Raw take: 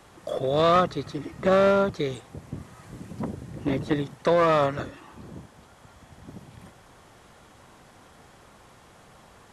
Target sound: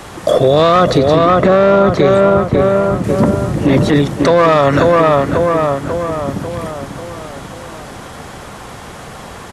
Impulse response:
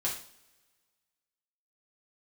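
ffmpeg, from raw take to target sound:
-filter_complex "[0:a]asettb=1/sr,asplit=3[link_01][link_02][link_03];[link_01]atrim=end=0.984[link_04];[link_02]atrim=start=0.98:end=3.04,asetpts=PTS-STARTPTS,afade=type=in:duration=0.004:curve=qsin,afade=type=out:start_time=2.056:duration=0.004:curve=qsin,highshelf=frequency=3500:gain=-9[link_05];[link_03]atrim=start=3.036[link_06];[link_04][link_05]acrossfade=duration=0.004:curve1=hsin:curve2=qsin[link_07];[link_07][link_06]acrossfade=duration=0.004:curve1=qsin:curve2=hsin,asplit=2[link_08][link_09];[link_09]adelay=542,lowpass=frequency=2400:poles=1,volume=-8dB,asplit=2[link_10][link_11];[link_11]adelay=542,lowpass=frequency=2400:poles=1,volume=0.54,asplit=2[link_12][link_13];[link_13]adelay=542,lowpass=frequency=2400:poles=1,volume=0.54,asplit=2[link_14][link_15];[link_15]adelay=542,lowpass=frequency=2400:poles=1,volume=0.54,asplit=2[link_16][link_17];[link_17]adelay=542,lowpass=frequency=2400:poles=1,volume=0.54,asplit=2[link_18][link_19];[link_19]adelay=542,lowpass=frequency=2400:poles=1,volume=0.54[link_20];[link_08][link_10][link_12][link_14][link_16][link_18][link_20]amix=inputs=7:normalize=0,alimiter=level_in=21.5dB:limit=-1dB:release=50:level=0:latency=1,volume=-1dB"

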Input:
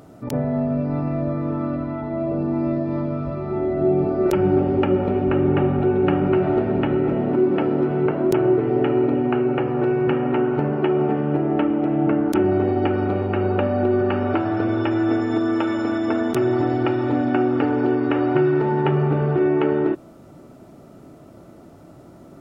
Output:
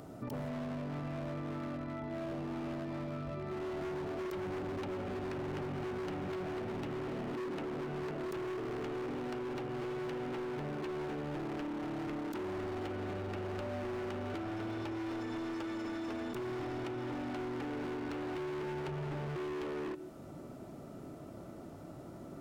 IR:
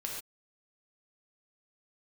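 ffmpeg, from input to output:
-filter_complex "[0:a]asplit=2[link_01][link_02];[1:a]atrim=start_sample=2205,asetrate=36603,aresample=44100[link_03];[link_02][link_03]afir=irnorm=-1:irlink=0,volume=-17.5dB[link_04];[link_01][link_04]amix=inputs=2:normalize=0,asoftclip=type=hard:threshold=-21dB,acrossover=split=830|1900[link_05][link_06][link_07];[link_05]acompressor=threshold=-36dB:ratio=4[link_08];[link_06]acompressor=threshold=-49dB:ratio=4[link_09];[link_07]acompressor=threshold=-48dB:ratio=4[link_10];[link_08][link_09][link_10]amix=inputs=3:normalize=0,volume=-4.5dB"

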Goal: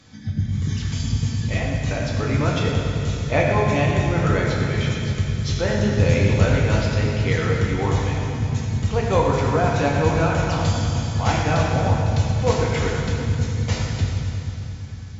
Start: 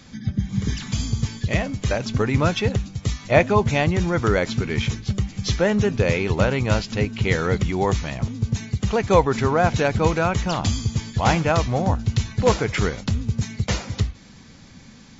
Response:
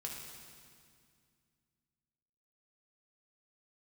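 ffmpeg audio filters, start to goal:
-filter_complex "[0:a]asettb=1/sr,asplit=3[link_01][link_02][link_03];[link_01]atrim=end=5.944[link_04];[link_02]atrim=start=5.94:end=6.5,asetpts=PTS-STARTPTS,afade=type=in:duration=0.004:curve=qsin,afade=type=out:start_time=0.556:duration=0.004:curve=qsin,bass=frequency=250:gain=5,treble=frequency=4000:gain=5[link_05];[link_03]atrim=start=6.496[link_06];[link_04][link_05]acrossfade=duration=0.004:curve1=hsin:curve2=qsin[link_07];[link_07][link_06]acrossfade=duration=0.004:curve1=qsin:curve2=hsin[link_08];[1:a]atrim=start_sample=2205,asetrate=29106,aresample=44100[link_09];[link_08][link_09]afir=irnorm=-1:irlink=0,volume=-2.5dB"

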